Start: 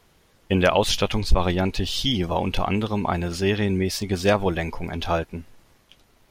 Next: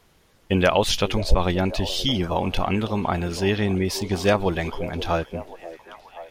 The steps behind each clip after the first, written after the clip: repeats whose band climbs or falls 532 ms, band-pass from 440 Hz, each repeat 0.7 oct, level -10.5 dB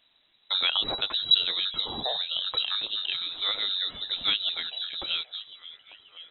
frequency inversion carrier 3.9 kHz; trim -7.5 dB

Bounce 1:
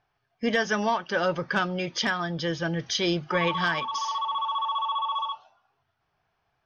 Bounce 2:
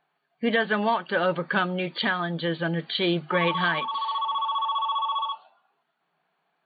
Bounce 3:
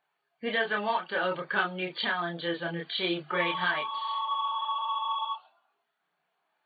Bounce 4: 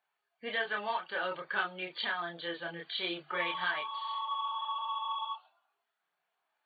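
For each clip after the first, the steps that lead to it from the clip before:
FFT band-pass 150–4600 Hz; trim +1.5 dB
bass shelf 290 Hz -10.5 dB; chorus voices 4, 0.55 Hz, delay 28 ms, depth 1.7 ms
bass shelf 310 Hz -11.5 dB; trim -4 dB

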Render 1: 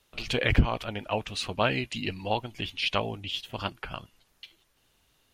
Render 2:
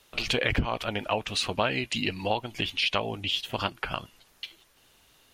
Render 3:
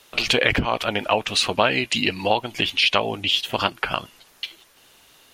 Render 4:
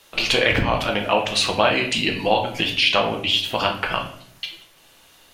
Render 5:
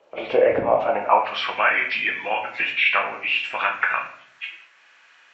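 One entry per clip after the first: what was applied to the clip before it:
bass shelf 200 Hz -6 dB; compression 2.5:1, threshold -34 dBFS, peak gain reduction 10.5 dB; trim +8 dB
bass shelf 140 Hz -9.5 dB; trim +8 dB
simulated room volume 100 m³, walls mixed, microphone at 0.67 m; trim -1 dB
knee-point frequency compression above 1.9 kHz 1.5:1; band-pass sweep 560 Hz -> 1.7 kHz, 0.70–1.57 s; trim +7.5 dB

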